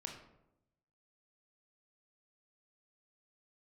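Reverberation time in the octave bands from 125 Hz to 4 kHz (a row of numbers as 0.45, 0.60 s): 1.2, 1.0, 0.95, 0.80, 0.60, 0.45 s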